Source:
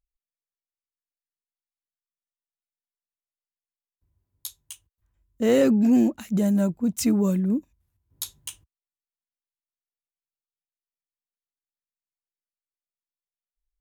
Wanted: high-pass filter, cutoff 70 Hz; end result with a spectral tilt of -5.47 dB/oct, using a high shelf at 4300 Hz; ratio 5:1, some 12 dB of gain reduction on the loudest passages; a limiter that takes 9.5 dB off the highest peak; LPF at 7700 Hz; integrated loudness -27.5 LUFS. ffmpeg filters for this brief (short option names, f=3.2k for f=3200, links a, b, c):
-af "highpass=70,lowpass=7.7k,highshelf=f=4.3k:g=8,acompressor=threshold=-29dB:ratio=5,volume=7.5dB,alimiter=limit=-19dB:level=0:latency=1"